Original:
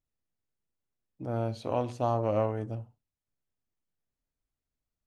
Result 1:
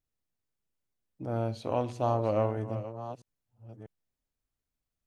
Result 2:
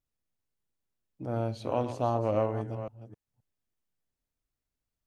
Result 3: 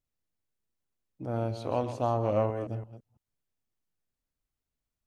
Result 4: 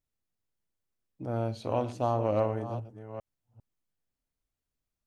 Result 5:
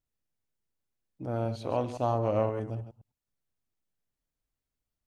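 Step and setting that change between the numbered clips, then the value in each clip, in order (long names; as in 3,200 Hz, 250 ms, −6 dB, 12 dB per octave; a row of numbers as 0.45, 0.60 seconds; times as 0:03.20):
delay that plays each chunk backwards, delay time: 644, 262, 167, 400, 104 milliseconds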